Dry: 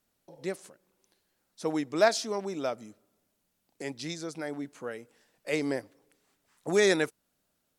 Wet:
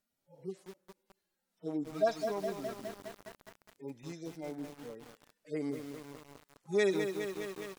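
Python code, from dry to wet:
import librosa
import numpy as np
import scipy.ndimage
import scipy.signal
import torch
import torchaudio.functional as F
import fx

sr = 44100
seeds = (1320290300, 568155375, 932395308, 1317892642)

y = fx.hpss_only(x, sr, part='harmonic')
y = fx.echo_crushed(y, sr, ms=206, feedback_pct=80, bits=7, wet_db=-6.5)
y = F.gain(torch.from_numpy(y), -5.0).numpy()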